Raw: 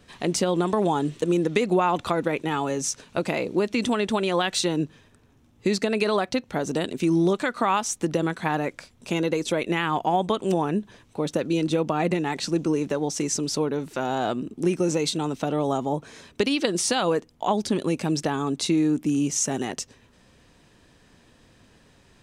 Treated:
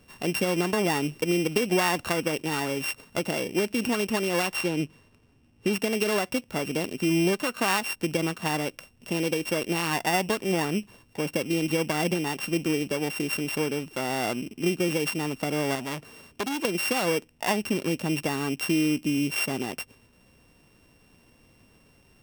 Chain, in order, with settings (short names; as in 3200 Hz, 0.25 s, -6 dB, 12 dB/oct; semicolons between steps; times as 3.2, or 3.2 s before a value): sample sorter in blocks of 16 samples; 4.56–5.73 high shelf 7500 Hz -7 dB; 15.75–16.65 core saturation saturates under 2100 Hz; gain -2.5 dB